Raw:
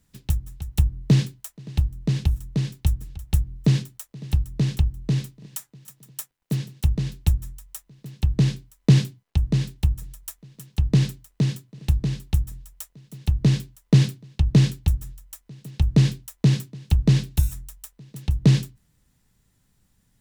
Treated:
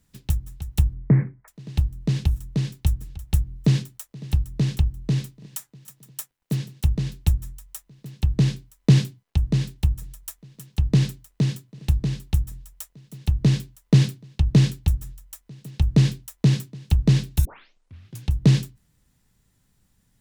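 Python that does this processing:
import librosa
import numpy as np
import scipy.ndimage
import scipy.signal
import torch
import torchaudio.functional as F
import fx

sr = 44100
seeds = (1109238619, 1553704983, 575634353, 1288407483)

y = fx.steep_lowpass(x, sr, hz=2200.0, slope=96, at=(0.94, 1.48))
y = fx.edit(y, sr, fx.tape_start(start_s=17.45, length_s=0.83), tone=tone)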